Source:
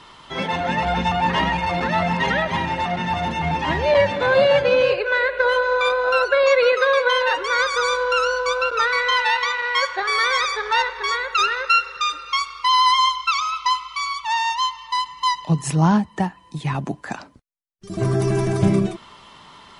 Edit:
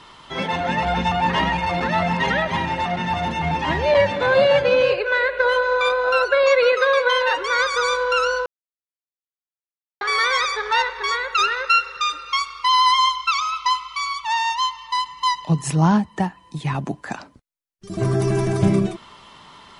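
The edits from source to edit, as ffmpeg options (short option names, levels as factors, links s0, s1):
-filter_complex "[0:a]asplit=3[s0][s1][s2];[s0]atrim=end=8.46,asetpts=PTS-STARTPTS,afade=t=out:st=8.456:d=0.004:c=hsin[s3];[s1]atrim=start=8.46:end=10.01,asetpts=PTS-STARTPTS,volume=0[s4];[s2]atrim=start=10.01,asetpts=PTS-STARTPTS,afade=t=in:d=0.004:c=hsin[s5];[s3][s4][s5]concat=n=3:v=0:a=1"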